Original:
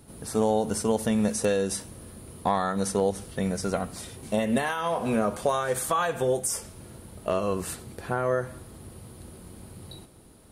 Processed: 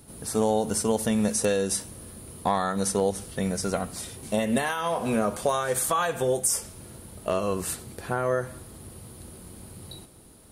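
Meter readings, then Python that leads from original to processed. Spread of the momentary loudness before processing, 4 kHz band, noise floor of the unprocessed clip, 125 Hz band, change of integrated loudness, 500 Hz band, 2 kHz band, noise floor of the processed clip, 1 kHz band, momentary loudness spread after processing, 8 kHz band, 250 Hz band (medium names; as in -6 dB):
20 LU, +2.5 dB, -50 dBFS, 0.0 dB, +1.0 dB, 0.0 dB, +0.5 dB, -49 dBFS, 0.0 dB, 19 LU, +4.5 dB, 0.0 dB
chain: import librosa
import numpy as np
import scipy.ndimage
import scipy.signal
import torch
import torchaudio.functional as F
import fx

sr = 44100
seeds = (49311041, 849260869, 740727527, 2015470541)

y = fx.high_shelf(x, sr, hz=4400.0, db=5.5)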